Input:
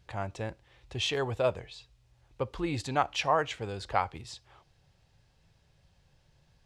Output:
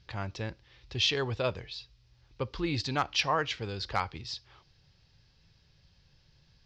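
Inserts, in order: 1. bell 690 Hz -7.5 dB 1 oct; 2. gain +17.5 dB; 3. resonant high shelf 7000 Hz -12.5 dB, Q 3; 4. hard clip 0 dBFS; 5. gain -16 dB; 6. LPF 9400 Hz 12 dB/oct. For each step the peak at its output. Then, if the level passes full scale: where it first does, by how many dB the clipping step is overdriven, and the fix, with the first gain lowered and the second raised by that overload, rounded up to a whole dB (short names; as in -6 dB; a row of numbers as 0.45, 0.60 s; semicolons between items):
-14.0, +3.5, +4.5, 0.0, -16.0, -15.5 dBFS; step 2, 4.5 dB; step 2 +12.5 dB, step 5 -11 dB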